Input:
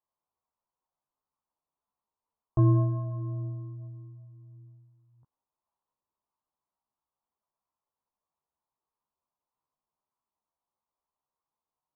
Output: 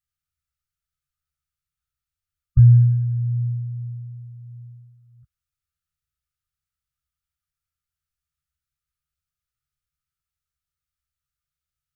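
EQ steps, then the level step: brick-wall FIR band-stop 170–1200 Hz; peaking EQ 65 Hz +5 dB 1.1 oct; bass shelf 110 Hz +10.5 dB; +5.0 dB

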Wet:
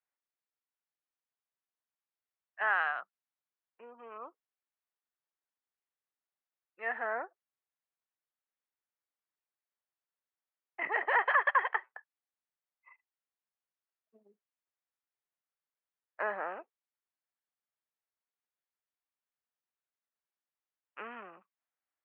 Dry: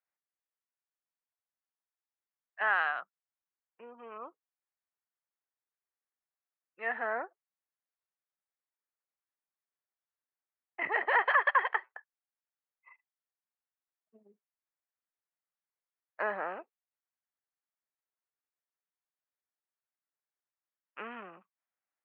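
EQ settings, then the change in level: high-pass 300 Hz 6 dB/octave; low-pass 3.9 kHz; distance through air 110 m; 0.0 dB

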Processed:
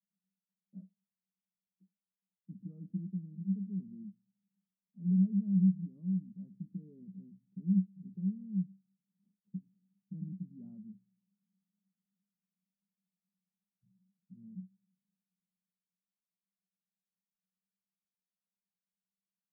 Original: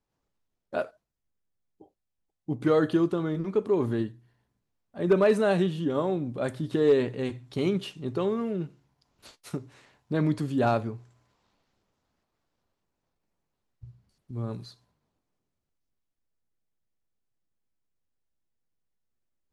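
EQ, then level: Butterworth band-pass 190 Hz, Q 8; +4.0 dB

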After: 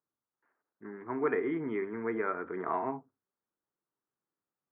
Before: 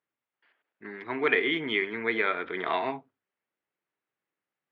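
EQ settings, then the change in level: low-pass 1.3 kHz 24 dB/octave; peaking EQ 640 Hz -5.5 dB 1 oct; 0.0 dB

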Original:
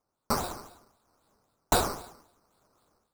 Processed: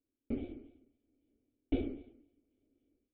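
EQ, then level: cascade formant filter i; treble shelf 3.2 kHz -12 dB; static phaser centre 420 Hz, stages 4; +9.0 dB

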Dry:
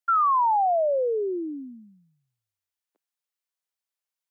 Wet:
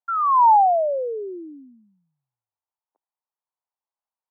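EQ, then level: resonant low-pass 900 Hz, resonance Q 3.4; bass shelf 420 Hz -11 dB; 0.0 dB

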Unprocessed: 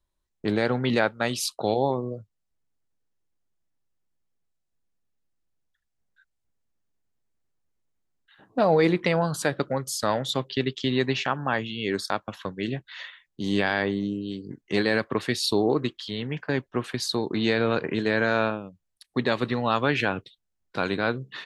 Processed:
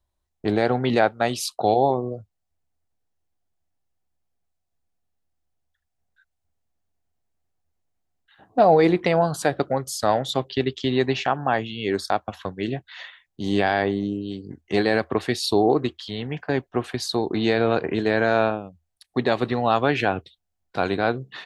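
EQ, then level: peaking EQ 80 Hz +13 dB 0.38 oct; peaking EQ 730 Hz +10 dB 0.37 oct; dynamic bell 370 Hz, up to +4 dB, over -33 dBFS, Q 1.7; 0.0 dB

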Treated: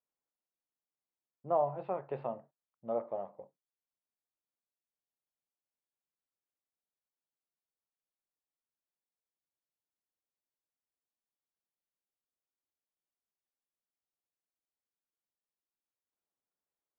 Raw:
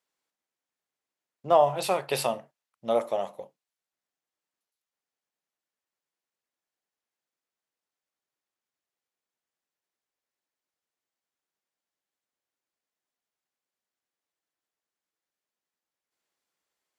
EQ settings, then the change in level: low-pass 1.3 kHz 12 dB/octave; distance through air 430 m; bass shelf 68 Hz +6 dB; -8.0 dB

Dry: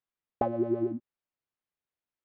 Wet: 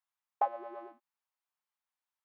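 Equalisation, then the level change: ladder high-pass 750 Hz, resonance 45%; +7.0 dB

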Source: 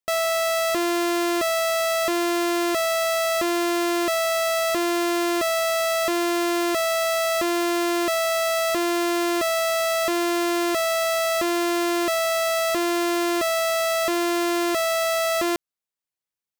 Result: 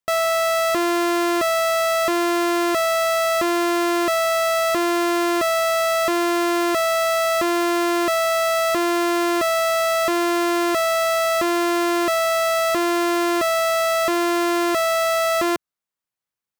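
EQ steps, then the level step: peaking EQ 130 Hz +4.5 dB 2.5 oct; peaking EQ 1.2 kHz +5 dB 1.5 oct; 0.0 dB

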